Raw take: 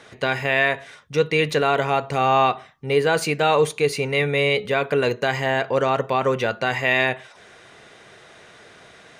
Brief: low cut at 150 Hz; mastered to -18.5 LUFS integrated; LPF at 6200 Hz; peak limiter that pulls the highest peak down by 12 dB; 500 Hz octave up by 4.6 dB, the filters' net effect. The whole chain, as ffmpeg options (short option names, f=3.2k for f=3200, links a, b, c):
-af "highpass=150,lowpass=6.2k,equalizer=f=500:t=o:g=5.5,volume=7.5dB,alimiter=limit=-8.5dB:level=0:latency=1"